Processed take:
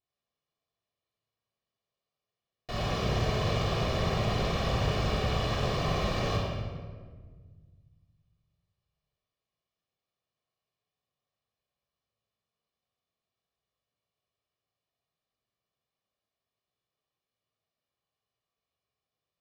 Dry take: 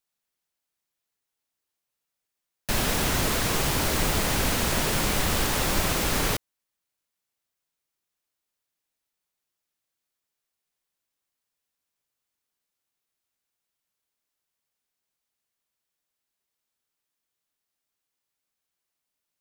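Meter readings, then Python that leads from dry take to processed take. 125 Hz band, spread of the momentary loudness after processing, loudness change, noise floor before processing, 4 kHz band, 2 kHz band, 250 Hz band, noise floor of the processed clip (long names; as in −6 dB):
+1.0 dB, 9 LU, −5.5 dB, −85 dBFS, −7.0 dB, −8.5 dB, −4.0 dB, below −85 dBFS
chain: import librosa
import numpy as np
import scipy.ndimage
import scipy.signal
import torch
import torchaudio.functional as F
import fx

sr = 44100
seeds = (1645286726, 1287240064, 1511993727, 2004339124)

p1 = fx.lower_of_two(x, sr, delay_ms=1.7)
p2 = fx.highpass(p1, sr, hz=110.0, slope=6)
p3 = fx.peak_eq(p2, sr, hz=1700.0, db=-8.5, octaves=1.0)
p4 = 10.0 ** (-29.5 / 20.0) * np.tanh(p3 / 10.0 ** (-29.5 / 20.0))
p5 = fx.air_absorb(p4, sr, metres=220.0)
p6 = p5 + fx.echo_feedback(p5, sr, ms=65, feedback_pct=58, wet_db=-9.5, dry=0)
y = fx.room_shoebox(p6, sr, seeds[0], volume_m3=1700.0, walls='mixed', distance_m=3.4)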